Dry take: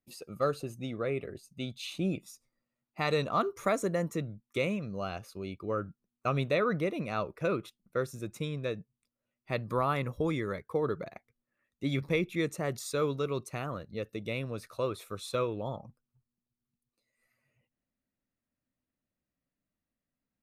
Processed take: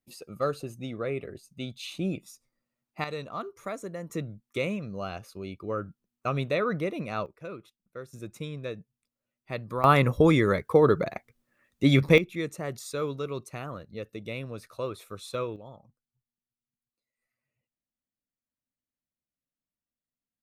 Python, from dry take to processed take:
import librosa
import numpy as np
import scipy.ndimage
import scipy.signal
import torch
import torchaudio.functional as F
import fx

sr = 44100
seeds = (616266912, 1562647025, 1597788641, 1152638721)

y = fx.gain(x, sr, db=fx.steps((0.0, 1.0), (3.04, -7.0), (4.1, 1.0), (7.26, -9.5), (8.13, -1.5), (9.84, 11.0), (12.18, -1.0), (15.56, -10.0)))